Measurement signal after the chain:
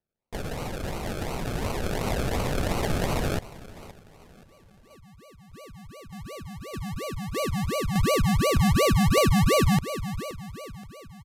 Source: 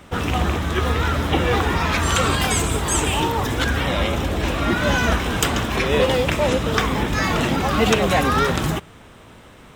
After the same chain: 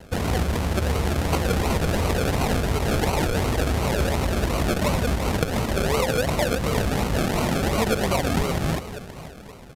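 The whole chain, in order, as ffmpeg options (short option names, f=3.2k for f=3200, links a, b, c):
-af "dynaudnorm=f=180:g=21:m=7dB,aecho=1:1:524|1048|1572:0.126|0.0504|0.0201,acrusher=samples=36:mix=1:aa=0.000001:lfo=1:lforange=21.6:lforate=2.8,aresample=32000,aresample=44100,equalizer=f=300:w=2.7:g=-4.5,acompressor=threshold=-18dB:ratio=12"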